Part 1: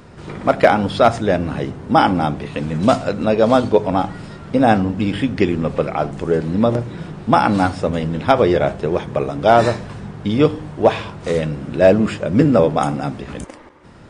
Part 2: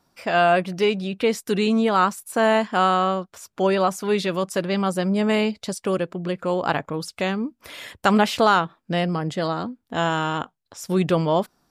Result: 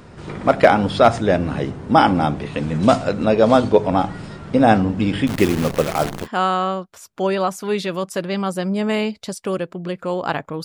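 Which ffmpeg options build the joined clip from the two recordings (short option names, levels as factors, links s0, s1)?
-filter_complex "[0:a]asettb=1/sr,asplit=3[s0][s1][s2];[s0]atrim=end=5.274[s3];[s1]atrim=start=5.27:end=6.28,asetpts=PTS-STARTPTS,afade=t=in:d=0.004:c=qsin,afade=t=out:st=1.006:d=0.004:c=qsin,acrusher=bits=5:dc=4:mix=0:aa=0.000001[s4];[s2]atrim=start=6.276[s5];[s3][s4]acrossfade=d=0.004:c1=hsin:c2=qsin[s6];[s6][s5]acrossfade=d=0.004:c1=qsin:c2=hsin,apad=whole_dur=10.64,atrim=end=10.64,atrim=end=6.28,asetpts=PTS-STARTPTS[s7];[1:a]atrim=start=2.6:end=7.04,asetpts=PTS-STARTPTS[s8];[s7][s8]acrossfade=d=0.08:c1=tri:c2=tri"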